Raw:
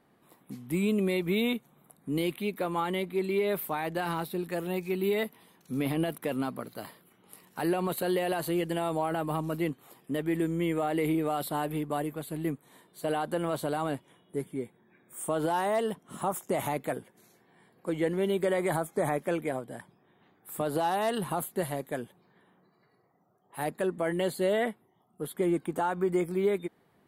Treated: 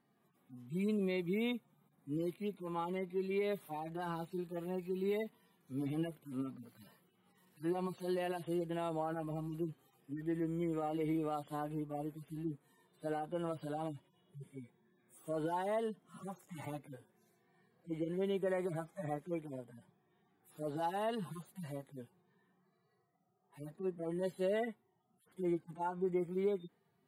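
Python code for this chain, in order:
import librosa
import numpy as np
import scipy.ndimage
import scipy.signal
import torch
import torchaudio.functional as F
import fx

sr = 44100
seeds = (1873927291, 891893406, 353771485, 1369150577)

y = fx.hpss_only(x, sr, part='harmonic')
y = F.gain(torch.from_numpy(y), -7.5).numpy()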